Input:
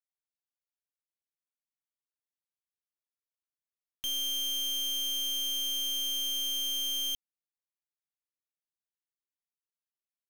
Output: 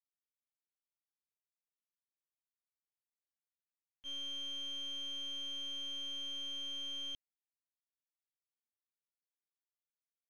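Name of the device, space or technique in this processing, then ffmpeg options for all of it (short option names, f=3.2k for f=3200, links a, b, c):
hearing-loss simulation: -af "lowpass=2.7k,agate=range=-33dB:threshold=-25dB:ratio=3:detection=peak,volume=14.5dB"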